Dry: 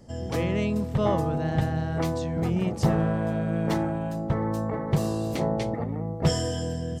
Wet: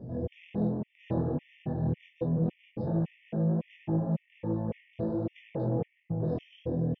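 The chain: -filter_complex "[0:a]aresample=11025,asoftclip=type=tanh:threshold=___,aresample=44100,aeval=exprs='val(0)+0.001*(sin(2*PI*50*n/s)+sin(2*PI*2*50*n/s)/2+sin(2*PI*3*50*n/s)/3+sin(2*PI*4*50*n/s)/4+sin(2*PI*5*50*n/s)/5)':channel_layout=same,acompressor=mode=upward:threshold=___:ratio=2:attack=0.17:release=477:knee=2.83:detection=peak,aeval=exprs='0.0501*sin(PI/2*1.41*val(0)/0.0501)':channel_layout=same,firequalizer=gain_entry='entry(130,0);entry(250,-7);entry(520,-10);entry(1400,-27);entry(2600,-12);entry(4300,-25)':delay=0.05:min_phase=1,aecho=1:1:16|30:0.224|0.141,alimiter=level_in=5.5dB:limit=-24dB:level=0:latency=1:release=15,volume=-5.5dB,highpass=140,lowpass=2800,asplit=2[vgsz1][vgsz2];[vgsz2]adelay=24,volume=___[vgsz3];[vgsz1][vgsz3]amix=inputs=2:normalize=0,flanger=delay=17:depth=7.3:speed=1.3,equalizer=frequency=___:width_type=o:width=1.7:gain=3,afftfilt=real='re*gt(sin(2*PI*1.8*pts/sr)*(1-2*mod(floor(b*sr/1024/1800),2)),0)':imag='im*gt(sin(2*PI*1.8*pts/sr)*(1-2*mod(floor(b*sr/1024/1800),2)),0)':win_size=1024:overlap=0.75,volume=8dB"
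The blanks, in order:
-27.5dB, -41dB, -5.5dB, 450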